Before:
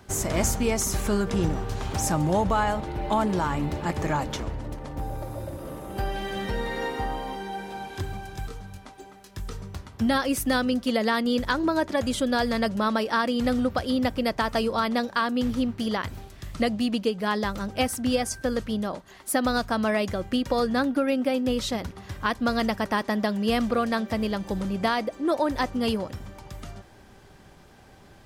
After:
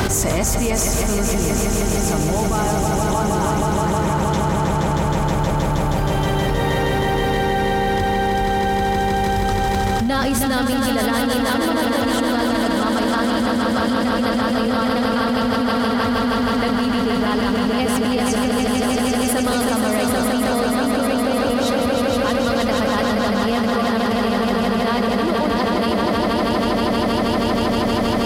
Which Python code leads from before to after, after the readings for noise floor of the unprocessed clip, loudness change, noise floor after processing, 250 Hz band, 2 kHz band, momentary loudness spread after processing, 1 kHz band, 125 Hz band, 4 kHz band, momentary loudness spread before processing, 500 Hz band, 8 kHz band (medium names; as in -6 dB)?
-51 dBFS, +7.5 dB, -20 dBFS, +8.0 dB, +7.5 dB, 1 LU, +9.0 dB, +9.5 dB, +8.5 dB, 12 LU, +8.0 dB, +9.0 dB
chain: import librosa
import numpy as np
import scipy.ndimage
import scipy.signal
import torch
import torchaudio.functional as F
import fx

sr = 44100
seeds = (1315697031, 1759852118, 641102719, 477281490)

p1 = fx.notch(x, sr, hz=1700.0, q=24.0)
p2 = p1 + fx.echo_swell(p1, sr, ms=158, loudest=5, wet_db=-5.0, dry=0)
p3 = fx.env_flatten(p2, sr, amount_pct=100)
y = p3 * librosa.db_to_amplitude(-4.0)